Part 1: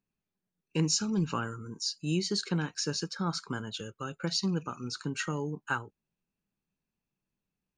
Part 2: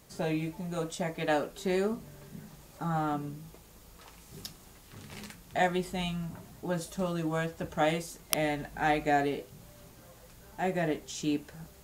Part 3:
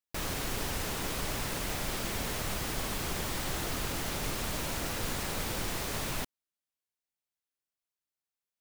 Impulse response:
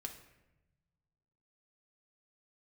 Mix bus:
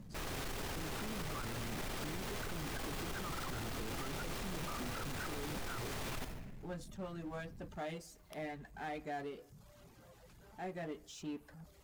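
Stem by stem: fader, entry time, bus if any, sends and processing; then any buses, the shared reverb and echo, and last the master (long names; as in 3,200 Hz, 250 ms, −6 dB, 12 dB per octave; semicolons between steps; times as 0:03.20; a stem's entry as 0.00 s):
−16.0 dB, 0.00 s, no bus, no send, spectral envelope exaggerated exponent 3; Butterworth low-pass 1,300 Hz; envelope flattener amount 100%
−19.5 dB, 0.00 s, bus A, send −18.5 dB, reverb reduction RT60 0.74 s
+1.0 dB, 0.00 s, bus A, send −10.5 dB, no processing
bus A: 0.0 dB, high-shelf EQ 6,200 Hz −10 dB; downward compressor, threshold −37 dBFS, peak gain reduction 8.5 dB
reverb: on, RT60 1.0 s, pre-delay 3 ms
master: power curve on the samples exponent 0.7; brickwall limiter −34.5 dBFS, peak gain reduction 11.5 dB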